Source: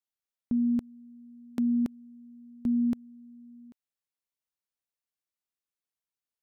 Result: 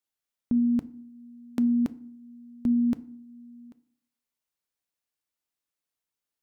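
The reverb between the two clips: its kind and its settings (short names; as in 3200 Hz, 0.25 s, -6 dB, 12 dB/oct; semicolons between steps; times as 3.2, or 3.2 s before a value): FDN reverb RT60 0.54 s, low-frequency decay 1.3×, high-frequency decay 0.65×, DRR 14 dB; gain +3.5 dB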